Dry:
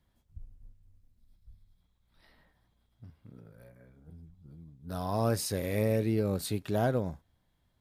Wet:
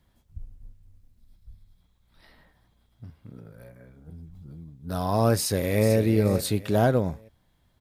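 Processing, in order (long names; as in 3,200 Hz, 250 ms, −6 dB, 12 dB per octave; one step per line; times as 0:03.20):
0:04.17–0:04.63: background raised ahead of every attack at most 21 dB per second
0:05.37–0:05.96: delay throw 440 ms, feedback 30%, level −10 dB
level +7 dB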